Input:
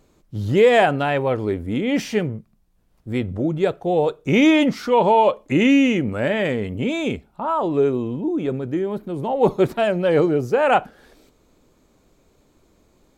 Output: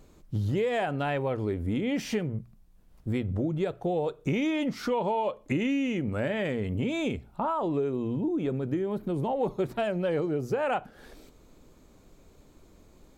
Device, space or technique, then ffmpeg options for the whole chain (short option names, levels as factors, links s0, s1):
ASMR close-microphone chain: -af "lowshelf=f=130:g=6.5,bandreject=f=60:t=h:w=6,bandreject=f=120:t=h:w=6,acompressor=threshold=0.0501:ratio=6,highshelf=f=5000:g=-5,highshelf=f=6100:g=6.5"